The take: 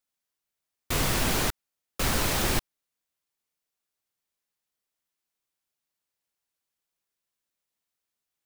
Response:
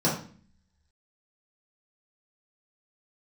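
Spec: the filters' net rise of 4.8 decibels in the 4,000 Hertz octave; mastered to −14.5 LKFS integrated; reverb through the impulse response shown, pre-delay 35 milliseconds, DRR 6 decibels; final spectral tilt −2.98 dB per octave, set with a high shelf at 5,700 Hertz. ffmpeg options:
-filter_complex "[0:a]equalizer=frequency=4000:width_type=o:gain=4.5,highshelf=frequency=5700:gain=4,asplit=2[link_01][link_02];[1:a]atrim=start_sample=2205,adelay=35[link_03];[link_02][link_03]afir=irnorm=-1:irlink=0,volume=-19dB[link_04];[link_01][link_04]amix=inputs=2:normalize=0,volume=9dB"

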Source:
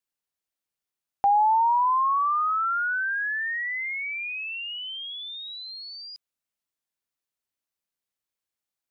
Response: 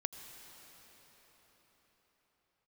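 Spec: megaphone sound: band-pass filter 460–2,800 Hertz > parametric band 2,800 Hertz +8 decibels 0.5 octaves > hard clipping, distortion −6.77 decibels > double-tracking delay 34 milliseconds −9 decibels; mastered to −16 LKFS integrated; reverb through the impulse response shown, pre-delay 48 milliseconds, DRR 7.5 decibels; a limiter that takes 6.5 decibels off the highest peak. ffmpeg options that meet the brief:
-filter_complex "[0:a]alimiter=limit=-22dB:level=0:latency=1,asplit=2[link_01][link_02];[1:a]atrim=start_sample=2205,adelay=48[link_03];[link_02][link_03]afir=irnorm=-1:irlink=0,volume=-7dB[link_04];[link_01][link_04]amix=inputs=2:normalize=0,highpass=460,lowpass=2800,equalizer=frequency=2800:width_type=o:width=0.5:gain=8,asoftclip=type=hard:threshold=-32dB,asplit=2[link_05][link_06];[link_06]adelay=34,volume=-9dB[link_07];[link_05][link_07]amix=inputs=2:normalize=0,volume=15.5dB"

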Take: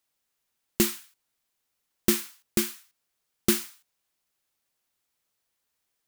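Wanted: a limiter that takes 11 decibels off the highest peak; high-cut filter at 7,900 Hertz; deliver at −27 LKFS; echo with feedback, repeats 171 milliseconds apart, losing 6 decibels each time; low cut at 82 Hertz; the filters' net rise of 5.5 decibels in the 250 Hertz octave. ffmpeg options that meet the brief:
ffmpeg -i in.wav -af "highpass=82,lowpass=7900,equalizer=frequency=250:width_type=o:gain=7.5,alimiter=limit=-16.5dB:level=0:latency=1,aecho=1:1:171|342|513|684|855|1026:0.501|0.251|0.125|0.0626|0.0313|0.0157,volume=6.5dB" out.wav

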